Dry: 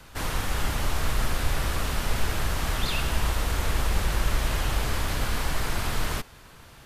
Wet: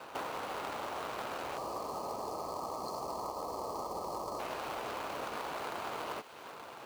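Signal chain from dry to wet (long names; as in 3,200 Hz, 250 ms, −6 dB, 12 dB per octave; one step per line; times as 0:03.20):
running median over 25 samples
meter weighting curve A
time-frequency box erased 0:01.57–0:04.39, 1,300–4,100 Hz
bass and treble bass −9 dB, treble −3 dB
downward compressor 6 to 1, threshold −48 dBFS, peak gain reduction 12.5 dB
floating-point word with a short mantissa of 2 bits
on a send: delay with a high-pass on its return 310 ms, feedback 66%, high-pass 1,900 Hz, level −12.5 dB
on the sum: level +11.5 dB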